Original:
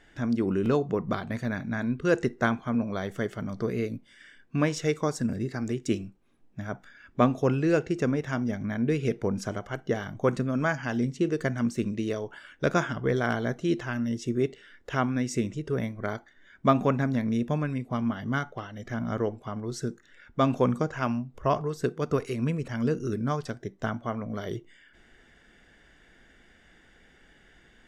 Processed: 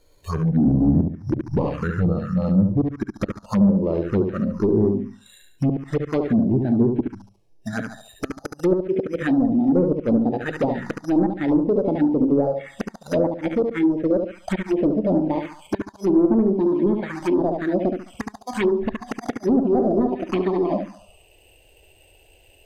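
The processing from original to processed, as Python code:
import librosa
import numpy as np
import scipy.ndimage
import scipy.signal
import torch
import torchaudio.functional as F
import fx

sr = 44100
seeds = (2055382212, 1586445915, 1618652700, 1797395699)

p1 = fx.speed_glide(x, sr, from_pct=67, to_pct=179)
p2 = fx.notch(p1, sr, hz=2000.0, q=12.0)
p3 = fx.gate_flip(p2, sr, shuts_db=-15.0, range_db=-36)
p4 = fx.high_shelf(p3, sr, hz=3100.0, db=-11.5)
p5 = np.repeat(p4[::8], 8)[:len(p4)]
p6 = fx.rider(p5, sr, range_db=5, speed_s=0.5)
p7 = p5 + (p6 * librosa.db_to_amplitude(-1.0))
p8 = fx.noise_reduce_blind(p7, sr, reduce_db=11)
p9 = np.clip(p8, -10.0 ** (-22.5 / 20.0), 10.0 ** (-22.5 / 20.0))
p10 = p9 + fx.echo_feedback(p9, sr, ms=71, feedback_pct=37, wet_db=-5, dry=0)
p11 = fx.env_phaser(p10, sr, low_hz=200.0, high_hz=3800.0, full_db=-20.5)
p12 = fx.env_lowpass_down(p11, sr, base_hz=610.0, full_db=-23.5)
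y = p12 * librosa.db_to_amplitude(8.5)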